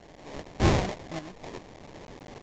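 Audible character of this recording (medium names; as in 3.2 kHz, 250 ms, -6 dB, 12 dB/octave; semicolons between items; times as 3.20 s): a quantiser's noise floor 8-bit, dither triangular; tremolo saw up 0.84 Hz, depth 60%; aliases and images of a low sample rate 1.4 kHz, jitter 20%; µ-law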